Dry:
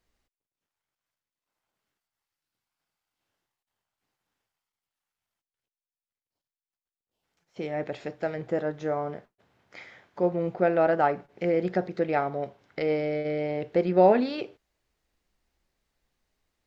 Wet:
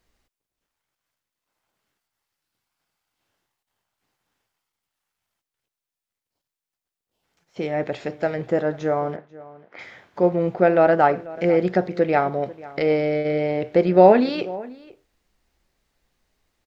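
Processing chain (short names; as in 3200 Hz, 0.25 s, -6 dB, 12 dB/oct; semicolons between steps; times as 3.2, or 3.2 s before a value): 9.16–9.79 BPF 260–2000 Hz; outdoor echo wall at 84 m, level -19 dB; gain +6.5 dB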